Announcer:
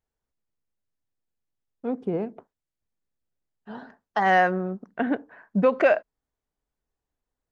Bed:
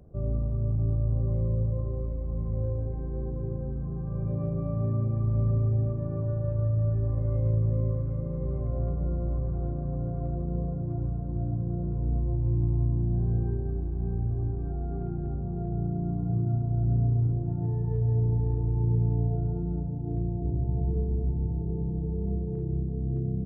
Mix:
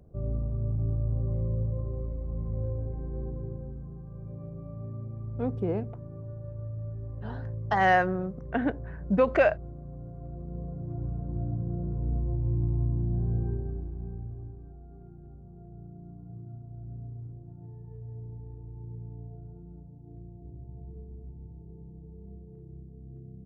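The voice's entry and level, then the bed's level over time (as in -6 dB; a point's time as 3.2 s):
3.55 s, -2.5 dB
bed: 3.27 s -2.5 dB
4.13 s -11 dB
10.15 s -11 dB
11.21 s -2 dB
13.54 s -2 dB
14.82 s -16.5 dB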